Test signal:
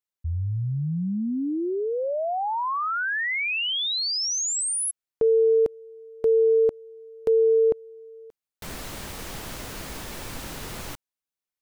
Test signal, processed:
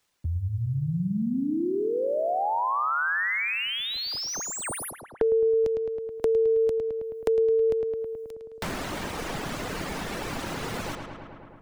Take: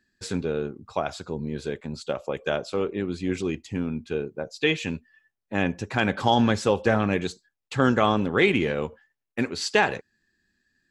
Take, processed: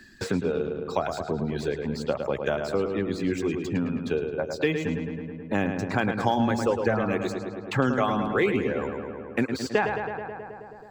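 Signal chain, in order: median filter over 3 samples; reverb removal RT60 1.5 s; dynamic EQ 3400 Hz, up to -7 dB, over -43 dBFS, Q 0.93; on a send: darkening echo 0.107 s, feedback 61%, low-pass 3300 Hz, level -6.5 dB; on the sum: three-band squash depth 70%

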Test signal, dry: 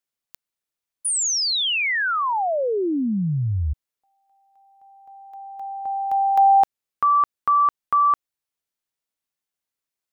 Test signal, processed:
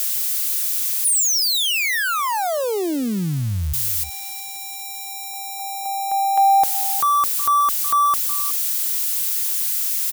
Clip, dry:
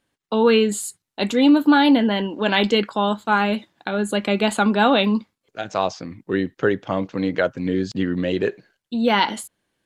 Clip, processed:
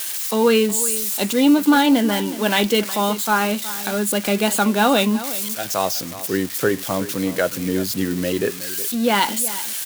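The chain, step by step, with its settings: switching spikes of -17.5 dBFS; on a send: echo 0.368 s -15 dB

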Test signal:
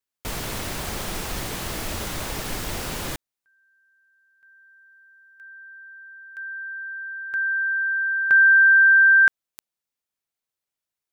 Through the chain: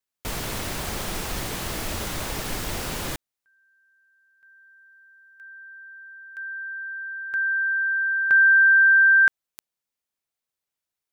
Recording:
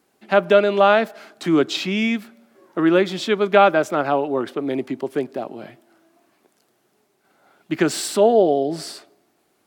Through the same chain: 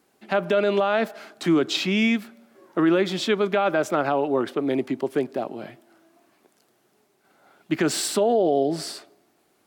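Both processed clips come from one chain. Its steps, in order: limiter -12 dBFS

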